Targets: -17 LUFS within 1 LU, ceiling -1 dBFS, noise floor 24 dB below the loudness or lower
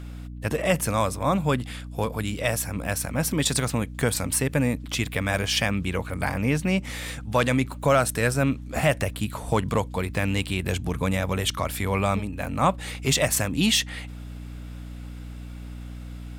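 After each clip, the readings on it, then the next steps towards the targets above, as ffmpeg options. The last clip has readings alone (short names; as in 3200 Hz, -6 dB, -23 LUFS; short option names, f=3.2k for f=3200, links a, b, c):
hum 60 Hz; harmonics up to 300 Hz; hum level -35 dBFS; loudness -25.0 LUFS; peak -9.0 dBFS; loudness target -17.0 LUFS
-> -af "bandreject=f=60:t=h:w=6,bandreject=f=120:t=h:w=6,bandreject=f=180:t=h:w=6,bandreject=f=240:t=h:w=6,bandreject=f=300:t=h:w=6"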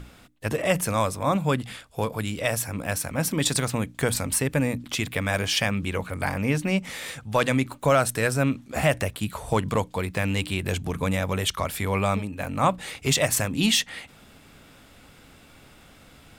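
hum none; loudness -25.5 LUFS; peak -8.5 dBFS; loudness target -17.0 LUFS
-> -af "volume=8.5dB,alimiter=limit=-1dB:level=0:latency=1"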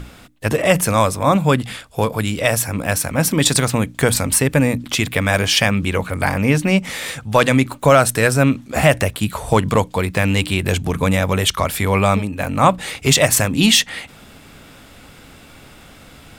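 loudness -17.0 LUFS; peak -1.0 dBFS; noise floor -44 dBFS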